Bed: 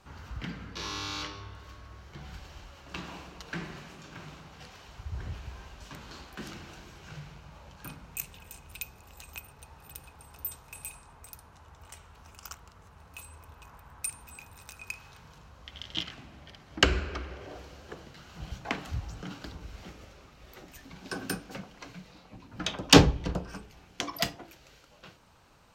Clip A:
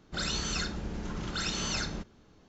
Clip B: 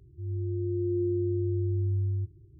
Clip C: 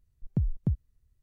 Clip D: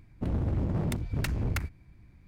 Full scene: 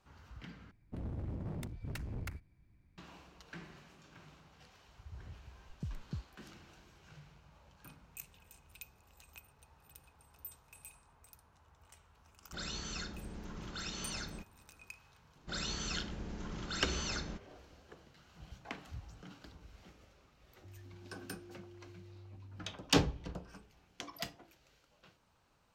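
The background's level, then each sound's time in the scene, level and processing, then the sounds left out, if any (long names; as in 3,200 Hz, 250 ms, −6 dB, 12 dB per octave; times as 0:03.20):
bed −12 dB
0:00.71: overwrite with D −12 dB
0:05.46: mix in C −14.5 dB
0:12.40: mix in A −9.5 dB
0:15.35: mix in A −6.5 dB
0:20.46: mix in B −15.5 dB + brickwall limiter −33.5 dBFS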